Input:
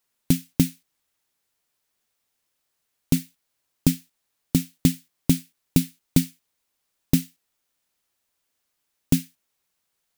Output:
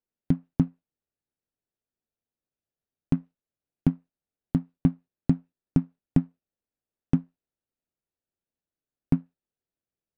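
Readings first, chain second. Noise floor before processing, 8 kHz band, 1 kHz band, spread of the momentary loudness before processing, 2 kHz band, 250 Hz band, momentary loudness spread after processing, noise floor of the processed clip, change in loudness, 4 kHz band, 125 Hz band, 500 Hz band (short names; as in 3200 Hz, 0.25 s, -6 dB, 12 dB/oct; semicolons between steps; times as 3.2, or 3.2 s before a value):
-77 dBFS, under -30 dB, +1.0 dB, 2 LU, under -10 dB, -3.0 dB, 3 LU, under -85 dBFS, -3.5 dB, under -20 dB, -2.5 dB, -3.5 dB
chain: median filter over 41 samples; treble ducked by the level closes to 1400 Hz, closed at -20 dBFS; upward expander 1.5:1, over -25 dBFS; gain -1.5 dB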